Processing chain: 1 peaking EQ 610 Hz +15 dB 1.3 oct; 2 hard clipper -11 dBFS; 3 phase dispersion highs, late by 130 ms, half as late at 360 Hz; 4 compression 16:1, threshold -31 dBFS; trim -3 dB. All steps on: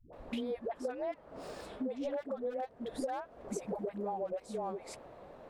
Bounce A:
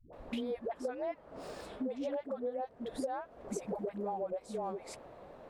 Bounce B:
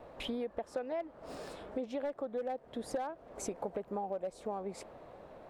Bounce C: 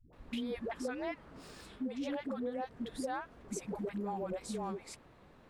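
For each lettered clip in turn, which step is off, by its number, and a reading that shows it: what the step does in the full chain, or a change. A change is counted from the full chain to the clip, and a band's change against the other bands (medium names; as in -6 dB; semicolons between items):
2, distortion -20 dB; 3, 4 kHz band +3.5 dB; 1, 500 Hz band -6.5 dB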